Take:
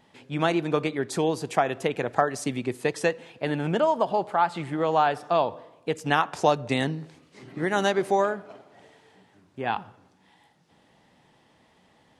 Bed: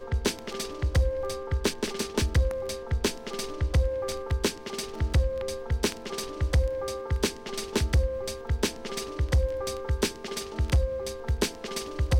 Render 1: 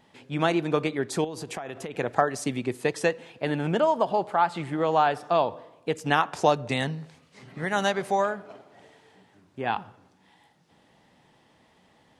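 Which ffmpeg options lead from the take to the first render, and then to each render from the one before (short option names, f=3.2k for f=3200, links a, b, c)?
-filter_complex "[0:a]asettb=1/sr,asplit=3[a][b][c];[a]atrim=end=1.244[d];[b]atrim=start=1.24:end=1.95,asetpts=PTS-STARTPTS,afade=t=in:d=0.004:c=qsin,afade=t=out:st=0.706:d=0.004:c=qsin,acompressor=threshold=-30dB:ratio=12:attack=3.2:release=140:knee=1:detection=peak[e];[c]atrim=start=1.946[f];[d][e]acrossfade=d=0.004:c1=hsin:c2=qsin[g];[g][f]acrossfade=d=0.004:c1=qsin:c2=hsin,asettb=1/sr,asplit=3[h][i][j];[h]atrim=end=6.714[k];[i]atrim=start=6.71:end=8.4,asetpts=PTS-STARTPTS,afade=t=in:d=0.004:c=qsin,afade=t=out:st=1.686:d=0.004:c=qsin,equalizer=f=330:t=o:w=0.49:g=-12[l];[j]atrim=start=8.396[m];[k][l]acrossfade=d=0.004:c1=hsin:c2=qsin[n];[n][m]acrossfade=d=0.004:c1=qsin:c2=hsin"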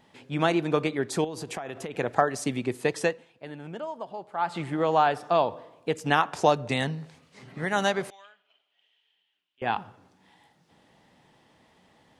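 -filter_complex "[0:a]asettb=1/sr,asplit=3[a][b][c];[a]atrim=end=8.104[d];[b]atrim=start=8.1:end=9.62,asetpts=PTS-STARTPTS,afade=t=in:d=0.004:c=qsin,afade=t=out:st=1.516:d=0.004:c=qsin,bandpass=f=3k:t=q:w=7.7[e];[c]atrim=start=9.616[f];[d][e]acrossfade=d=0.004:c1=hsin:c2=qsin[g];[g][f]acrossfade=d=0.004:c1=qsin:c2=hsin,asplit=3[h][i][j];[h]atrim=end=3.26,asetpts=PTS-STARTPTS,afade=t=out:st=3.02:d=0.24:silence=0.223872[k];[i]atrim=start=3.26:end=4.32,asetpts=PTS-STARTPTS,volume=-13dB[l];[j]atrim=start=4.32,asetpts=PTS-STARTPTS,afade=t=in:d=0.24:silence=0.223872[m];[k][l][m]concat=n=3:v=0:a=1"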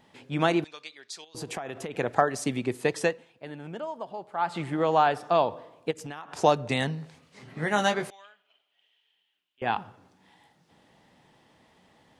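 -filter_complex "[0:a]asettb=1/sr,asplit=3[a][b][c];[a]atrim=end=0.644[d];[b]atrim=start=0.64:end=1.35,asetpts=PTS-STARTPTS,afade=t=in:d=0.004:c=qsin,afade=t=out:st=0.706:d=0.004:c=qsin,bandpass=f=4.8k:t=q:w=1.8[e];[c]atrim=start=1.346[f];[d][e]acrossfade=d=0.004:c1=hsin:c2=qsin[g];[g][f]acrossfade=d=0.004:c1=qsin:c2=hsin,asplit=3[h][i][j];[h]afade=t=out:st=5.9:d=0.02[k];[i]acompressor=threshold=-35dB:ratio=8:attack=3.2:release=140:knee=1:detection=peak,afade=t=in:st=5.9:d=0.02,afade=t=out:st=6.36:d=0.02[l];[j]afade=t=in:st=6.36:d=0.02[m];[k][l][m]amix=inputs=3:normalize=0,asettb=1/sr,asplit=3[n][o][p];[n]atrim=end=7.474[q];[o]atrim=start=7.47:end=8.08,asetpts=PTS-STARTPTS,afade=t=in:d=0.004:c=qsin,afade=t=out:st=0.606:d=0.004:c=qsin,asplit=2[r][s];[s]adelay=19,volume=-6.5dB[t];[r][t]amix=inputs=2:normalize=0,atrim=end_sample=26901[u];[p]atrim=start=8.076[v];[q][u]acrossfade=d=0.004:c1=hsin:c2=qsin[w];[w][v]acrossfade=d=0.004:c1=qsin:c2=hsin"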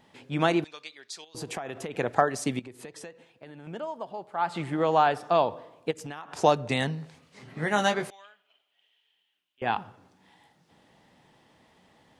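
-filter_complex "[0:a]asettb=1/sr,asplit=3[a][b][c];[a]atrim=end=2.594[d];[b]atrim=start=2.59:end=3.67,asetpts=PTS-STARTPTS,afade=t=in:d=0.004:c=qsin,afade=t=out:st=1.076:d=0.004:c=qsin,acompressor=threshold=-41dB:ratio=5:attack=3.2:release=140:knee=1:detection=peak[e];[c]atrim=start=3.666[f];[d][e]acrossfade=d=0.004:c1=hsin:c2=qsin[g];[g][f]acrossfade=d=0.004:c1=qsin:c2=hsin"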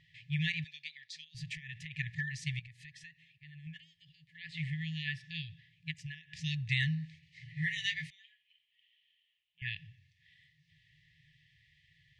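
-af "afftfilt=real='re*(1-between(b*sr/4096,170,1700))':imag='im*(1-between(b*sr/4096,170,1700))':win_size=4096:overlap=0.75,lowpass=3.5k"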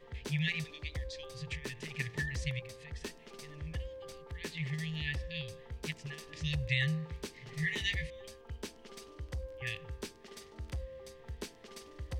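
-filter_complex "[1:a]volume=-16.5dB[a];[0:a][a]amix=inputs=2:normalize=0"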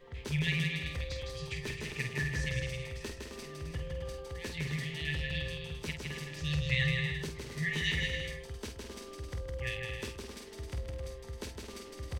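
-filter_complex "[0:a]asplit=2[a][b];[b]adelay=48,volume=-7dB[c];[a][c]amix=inputs=2:normalize=0,aecho=1:1:160|264|331.6|375.5|404.1:0.631|0.398|0.251|0.158|0.1"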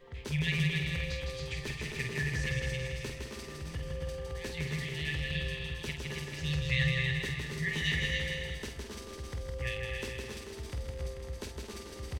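-af "aecho=1:1:278|473:0.531|0.251"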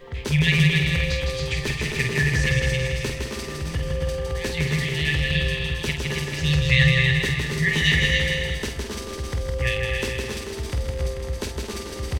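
-af "volume=12dB"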